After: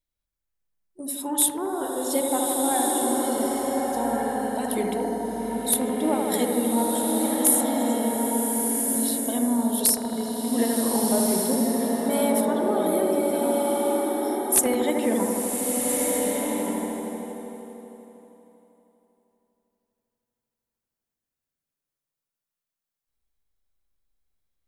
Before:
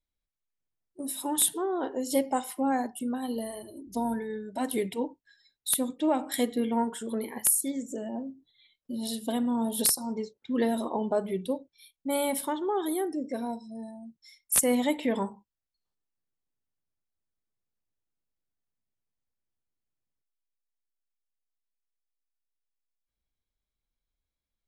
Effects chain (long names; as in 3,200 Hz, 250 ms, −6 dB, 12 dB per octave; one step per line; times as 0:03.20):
high-shelf EQ 7,900 Hz +6 dB
on a send: bucket-brigade delay 79 ms, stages 1,024, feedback 84%, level −4 dB
on the sum: slow-attack reverb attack 1,510 ms, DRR 0 dB